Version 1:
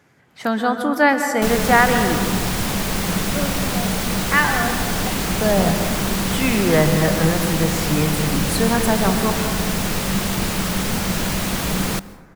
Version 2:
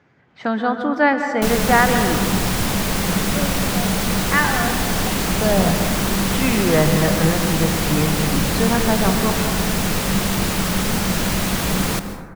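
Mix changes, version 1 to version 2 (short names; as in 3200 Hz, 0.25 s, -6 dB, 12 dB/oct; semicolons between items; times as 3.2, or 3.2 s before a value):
speech: add air absorption 170 m; background: send +10.0 dB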